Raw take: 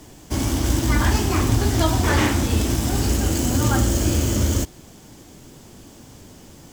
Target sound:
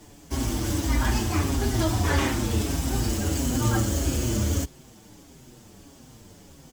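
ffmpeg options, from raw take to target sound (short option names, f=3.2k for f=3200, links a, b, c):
-filter_complex "[0:a]asplit=2[a][b];[b]adelay=6.3,afreqshift=-1.6[c];[a][c]amix=inputs=2:normalize=1,volume=-2dB"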